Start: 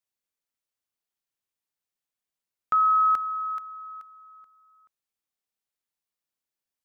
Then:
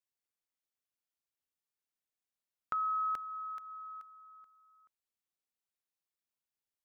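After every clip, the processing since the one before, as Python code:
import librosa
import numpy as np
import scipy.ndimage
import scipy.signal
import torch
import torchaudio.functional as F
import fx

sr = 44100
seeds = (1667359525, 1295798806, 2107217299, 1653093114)

y = fx.dynamic_eq(x, sr, hz=1200.0, q=2.8, threshold_db=-36.0, ratio=4.0, max_db=-8)
y = y * 10.0 ** (-6.0 / 20.0)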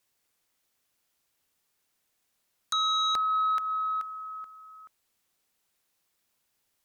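y = fx.fold_sine(x, sr, drive_db=13, ceiling_db=-22.5)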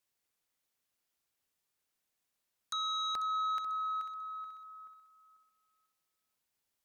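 y = fx.echo_feedback(x, sr, ms=493, feedback_pct=26, wet_db=-14)
y = y * 10.0 ** (-8.5 / 20.0)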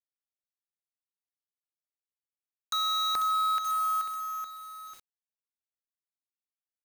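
y = fx.quant_companded(x, sr, bits=4)
y = y * 10.0 ** (6.0 / 20.0)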